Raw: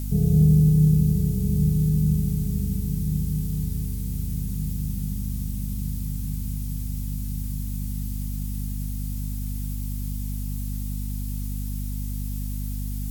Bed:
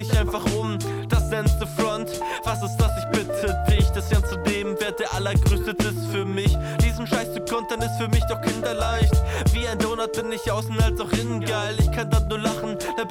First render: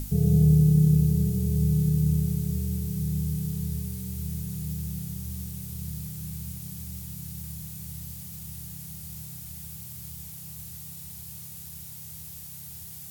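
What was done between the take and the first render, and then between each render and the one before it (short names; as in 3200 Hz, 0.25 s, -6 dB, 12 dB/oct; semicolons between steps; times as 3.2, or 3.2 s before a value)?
notches 50/100/150/200/250/300 Hz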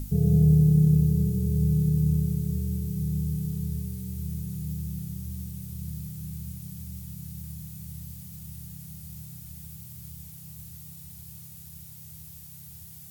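denoiser 6 dB, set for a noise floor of -42 dBFS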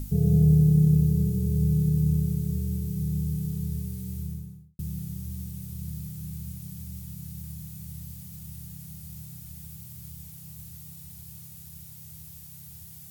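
4.13–4.79 studio fade out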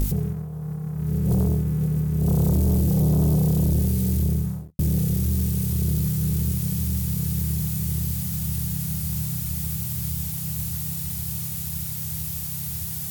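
negative-ratio compressor -27 dBFS, ratio -0.5; sample leveller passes 3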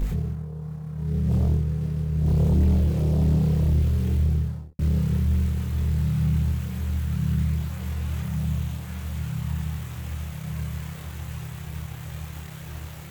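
median filter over 9 samples; chorus voices 4, 0.46 Hz, delay 26 ms, depth 2.1 ms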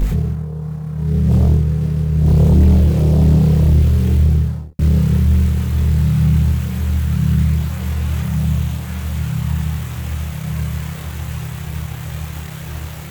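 gain +9 dB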